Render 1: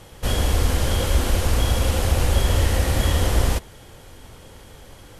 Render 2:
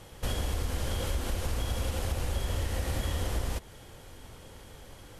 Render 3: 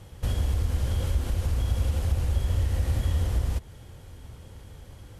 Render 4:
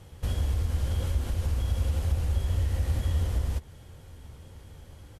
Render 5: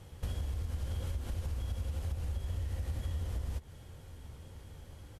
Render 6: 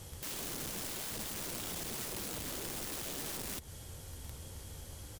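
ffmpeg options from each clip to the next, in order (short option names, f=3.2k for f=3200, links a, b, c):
-af "acompressor=threshold=-23dB:ratio=4,volume=-5dB"
-af "equalizer=f=80:t=o:w=2.5:g=12,volume=-3.5dB"
-filter_complex "[0:a]asplit=2[a][b];[b]adelay=13,volume=-12dB[c];[a][c]amix=inputs=2:normalize=0,volume=-2.5dB"
-af "acompressor=threshold=-30dB:ratio=6,volume=-2.5dB"
-af "bass=f=250:g=-2,treble=f=4k:g=12,aeval=exprs='(mod(89.1*val(0)+1,2)-1)/89.1':c=same,volume=3dB"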